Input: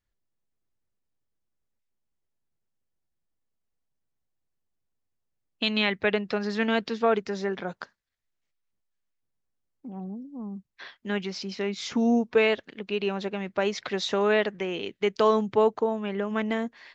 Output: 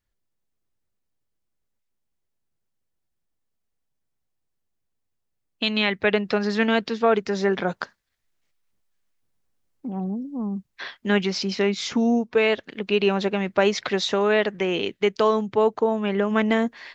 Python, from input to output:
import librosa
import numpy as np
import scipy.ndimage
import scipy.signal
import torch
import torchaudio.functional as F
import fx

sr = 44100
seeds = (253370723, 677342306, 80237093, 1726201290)

y = fx.rider(x, sr, range_db=4, speed_s=0.5)
y = F.gain(torch.from_numpy(y), 4.5).numpy()